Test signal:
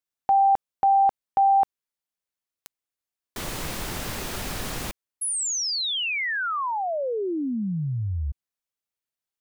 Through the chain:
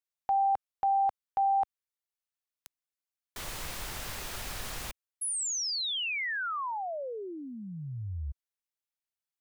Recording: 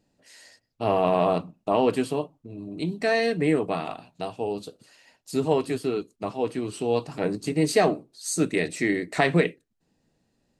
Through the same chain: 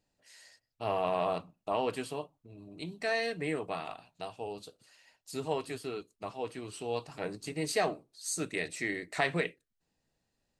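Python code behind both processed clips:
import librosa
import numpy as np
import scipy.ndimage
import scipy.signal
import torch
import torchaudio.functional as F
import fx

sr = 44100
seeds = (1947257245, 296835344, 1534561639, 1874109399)

y = fx.peak_eq(x, sr, hz=240.0, db=-9.0, octaves=2.2)
y = y * librosa.db_to_amplitude(-5.5)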